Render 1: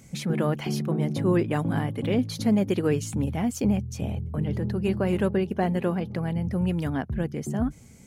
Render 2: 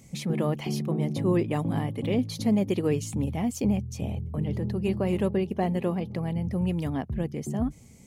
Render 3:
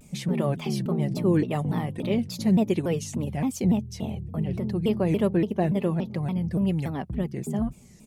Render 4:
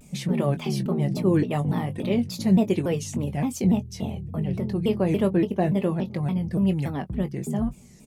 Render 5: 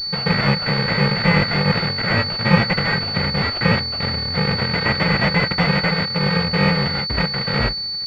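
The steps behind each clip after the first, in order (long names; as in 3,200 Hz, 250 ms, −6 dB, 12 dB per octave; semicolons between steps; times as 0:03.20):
parametric band 1,500 Hz −11 dB 0.31 octaves; level −1.5 dB
comb filter 5.2 ms, depth 44%; pitch modulation by a square or saw wave saw down 3.5 Hz, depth 250 cents
double-tracking delay 21 ms −10.5 dB; level +1 dB
samples in bit-reversed order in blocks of 128 samples; switching amplifier with a slow clock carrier 4,500 Hz; level +8.5 dB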